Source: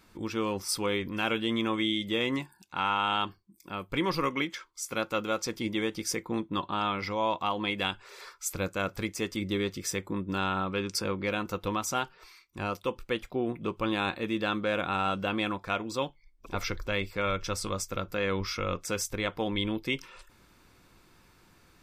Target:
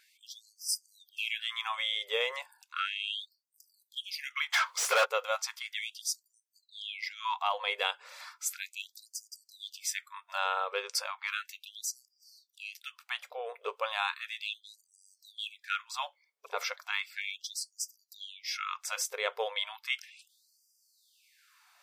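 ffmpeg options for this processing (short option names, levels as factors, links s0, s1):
-filter_complex "[0:a]asplit=3[s0][s1][s2];[s0]afade=t=out:st=4.52:d=0.02[s3];[s1]asplit=2[s4][s5];[s5]highpass=f=720:p=1,volume=50.1,asoftclip=type=tanh:threshold=0.158[s6];[s4][s6]amix=inputs=2:normalize=0,lowpass=f=2700:p=1,volume=0.501,afade=t=in:st=4.52:d=0.02,afade=t=out:st=5.04:d=0.02[s7];[s2]afade=t=in:st=5.04:d=0.02[s8];[s3][s7][s8]amix=inputs=3:normalize=0,afftfilt=real='re*gte(b*sr/1024,390*pow(4700/390,0.5+0.5*sin(2*PI*0.35*pts/sr)))':imag='im*gte(b*sr/1024,390*pow(4700/390,0.5+0.5*sin(2*PI*0.35*pts/sr)))':win_size=1024:overlap=0.75"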